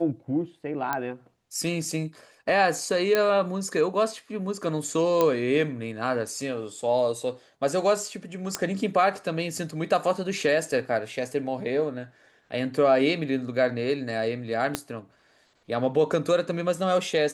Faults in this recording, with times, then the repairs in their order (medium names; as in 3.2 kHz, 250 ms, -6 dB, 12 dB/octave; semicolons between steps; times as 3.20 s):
0.93 s: pop -12 dBFS
3.15 s: pop -9 dBFS
5.21 s: pop -9 dBFS
8.55 s: pop -10 dBFS
14.75 s: pop -9 dBFS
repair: de-click